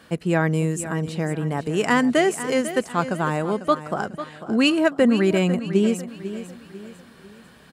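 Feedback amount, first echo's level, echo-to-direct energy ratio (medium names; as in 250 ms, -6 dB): 40%, -12.5 dB, -11.5 dB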